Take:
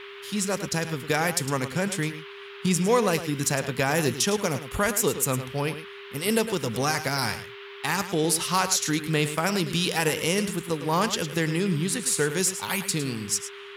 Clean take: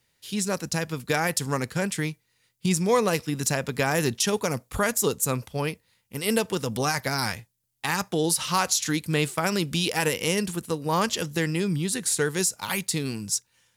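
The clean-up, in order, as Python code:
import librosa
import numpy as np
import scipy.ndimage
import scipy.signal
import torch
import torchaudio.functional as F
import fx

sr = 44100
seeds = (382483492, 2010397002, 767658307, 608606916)

y = fx.notch(x, sr, hz=400.0, q=30.0)
y = fx.noise_reduce(y, sr, print_start_s=2.14, print_end_s=2.64, reduce_db=25.0)
y = fx.fix_echo_inverse(y, sr, delay_ms=107, level_db=-11.5)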